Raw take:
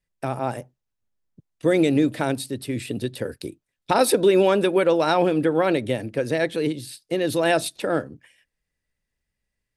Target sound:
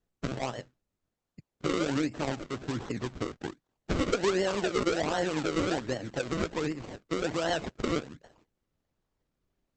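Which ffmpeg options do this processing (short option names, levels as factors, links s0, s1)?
-filter_complex "[0:a]asettb=1/sr,asplit=3[s0][s1][s2];[s0]atrim=end=4.524[s3];[s1]atrim=start=4.52:end=6.08,asetpts=PTS-STARTPTS,afade=t=in:d=0.004:c=qsin,afade=t=out:st=1.556:d=0.004:c=qsin,adynamicequalizer=threshold=0.0158:dfrequency=1000:dqfactor=2.9:tfrequency=1000:tqfactor=2.9:attack=5:release=100:ratio=0.375:range=2:mode=cutabove:tftype=bell[s4];[s2]atrim=start=6.076[s5];[s3][s4]acrossfade=d=0.004:c1=hsin:c2=qsin[s6];[s6][s5]acrossfade=d=0.004:c1=qsin:c2=hsin,acompressor=threshold=0.0224:ratio=2,acrusher=samples=36:mix=1:aa=0.000001:lfo=1:lforange=36:lforate=1.3" -ar 48000 -c:a libopus -b:a 10k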